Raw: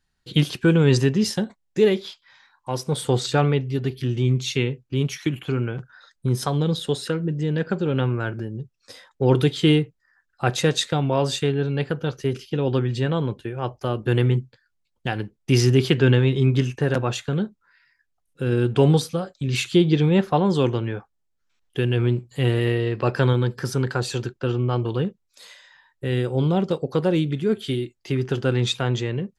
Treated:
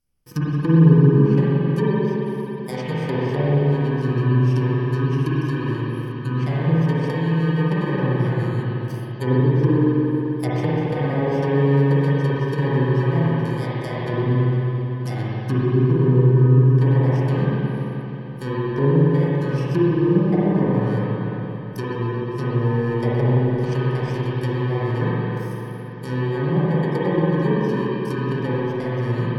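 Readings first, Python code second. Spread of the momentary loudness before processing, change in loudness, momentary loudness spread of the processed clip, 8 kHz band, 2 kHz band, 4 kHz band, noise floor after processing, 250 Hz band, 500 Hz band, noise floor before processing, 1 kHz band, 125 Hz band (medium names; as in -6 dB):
11 LU, +2.5 dB, 10 LU, under -15 dB, -0.5 dB, under -10 dB, -30 dBFS, +3.0 dB, +1.0 dB, -73 dBFS, +2.0 dB, +4.0 dB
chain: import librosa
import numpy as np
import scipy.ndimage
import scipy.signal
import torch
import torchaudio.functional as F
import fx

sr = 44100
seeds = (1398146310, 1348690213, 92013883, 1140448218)

y = fx.bit_reversed(x, sr, seeds[0], block=32)
y = fx.env_lowpass_down(y, sr, base_hz=490.0, full_db=-14.0)
y = fx.rev_spring(y, sr, rt60_s=3.9, pass_ms=(43, 55), chirp_ms=80, drr_db=-8.0)
y = y * librosa.db_to_amplitude(-5.0)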